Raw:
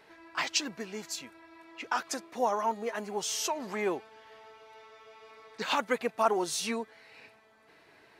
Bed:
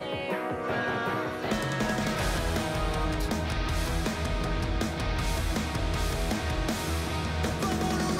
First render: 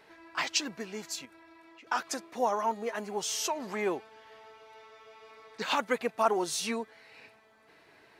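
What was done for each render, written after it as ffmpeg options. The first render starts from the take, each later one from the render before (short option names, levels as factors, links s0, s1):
-filter_complex "[0:a]asettb=1/sr,asplit=3[s0][s1][s2];[s0]atrim=end=1.254[s3];[s1]atrim=start=1.25:end=1.87,asetpts=PTS-STARTPTS,afade=t=in:d=0.004:c=qsin,afade=t=out:st=0.616:d=0.004:c=qsin,acompressor=threshold=0.00282:ratio=6:attack=3.2:release=140:knee=1:detection=peak[s4];[s2]atrim=start=1.866[s5];[s3][s4]acrossfade=d=0.004:c1=hsin:c2=qsin[s6];[s6][s5]acrossfade=d=0.004:c1=qsin:c2=hsin"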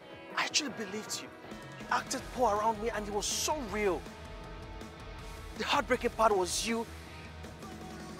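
-filter_complex "[1:a]volume=0.141[s0];[0:a][s0]amix=inputs=2:normalize=0"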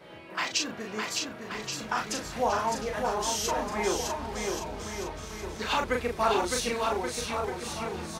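-filter_complex "[0:a]asplit=2[s0][s1];[s1]adelay=37,volume=0.631[s2];[s0][s2]amix=inputs=2:normalize=0,asplit=2[s3][s4];[s4]aecho=0:1:610|1128|1569|1944|2262:0.631|0.398|0.251|0.158|0.1[s5];[s3][s5]amix=inputs=2:normalize=0"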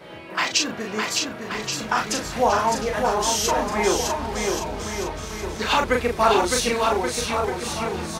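-af "volume=2.37"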